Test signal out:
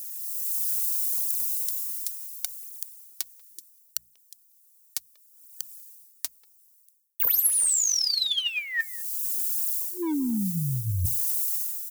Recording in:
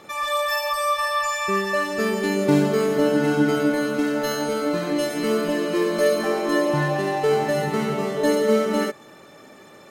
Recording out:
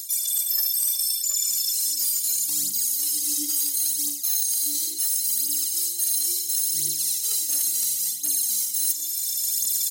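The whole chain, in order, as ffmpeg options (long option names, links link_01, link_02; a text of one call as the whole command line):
ffmpeg -i in.wav -filter_complex "[0:a]crystalizer=i=9:c=0,highpass=130,aexciter=amount=14.3:drive=3.9:freq=3800,afftfilt=real='re*(1-between(b*sr/4096,360,1800))':imag='im*(1-between(b*sr/4096,360,1800))':win_size=4096:overlap=0.75,adynamicequalizer=threshold=0.0112:dfrequency=320:dqfactor=6.1:tfrequency=320:tqfactor=6.1:attack=5:release=100:ratio=0.375:range=3.5:mode=boostabove:tftype=bell,dynaudnorm=framelen=200:gausssize=5:maxgain=12dB,asoftclip=type=hard:threshold=-7dB,bandreject=frequency=60:width_type=h:width=6,bandreject=frequency=120:width_type=h:width=6,bandreject=frequency=180:width_type=h:width=6,asplit=2[link_01][link_02];[link_02]adelay=190,highpass=300,lowpass=3400,asoftclip=type=hard:threshold=-15dB,volume=-24dB[link_03];[link_01][link_03]amix=inputs=2:normalize=0,aphaser=in_gain=1:out_gain=1:delay=3.6:decay=0.65:speed=0.72:type=triangular,areverse,acompressor=threshold=-24dB:ratio=8,areverse,highshelf=frequency=5200:gain=5,volume=-1.5dB" out.wav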